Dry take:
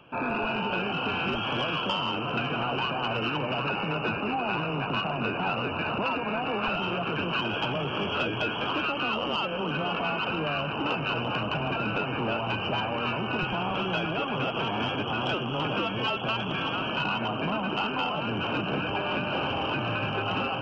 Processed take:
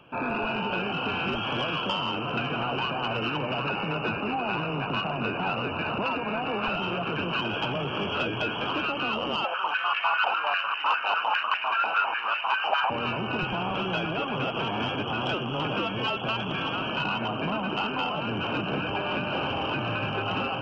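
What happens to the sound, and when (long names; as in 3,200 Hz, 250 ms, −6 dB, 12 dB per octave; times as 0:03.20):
0:09.44–0:12.90: high-pass on a step sequencer 10 Hz 780–1,900 Hz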